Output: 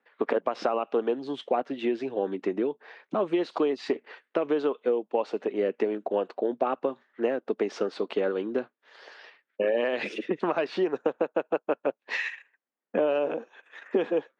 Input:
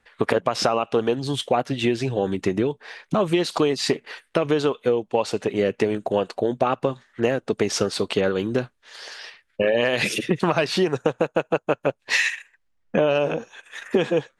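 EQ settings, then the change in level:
high-pass filter 250 Hz 24 dB per octave
head-to-tape spacing loss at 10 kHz 31 dB
−3.0 dB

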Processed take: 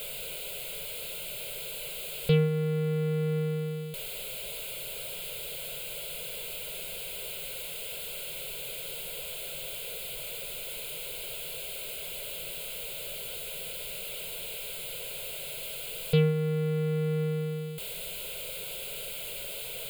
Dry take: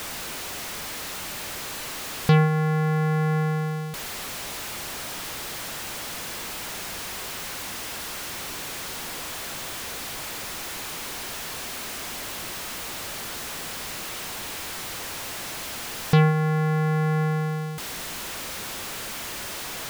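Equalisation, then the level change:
phaser with its sweep stopped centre 310 Hz, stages 6
phaser with its sweep stopped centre 1,200 Hz, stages 8
0.0 dB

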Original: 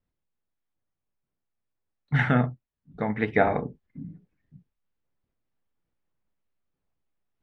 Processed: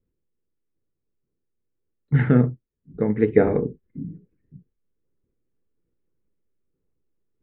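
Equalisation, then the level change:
high-frequency loss of the air 430 metres
parametric band 350 Hz +3 dB 0.24 octaves
low shelf with overshoot 560 Hz +6.5 dB, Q 3
−1.0 dB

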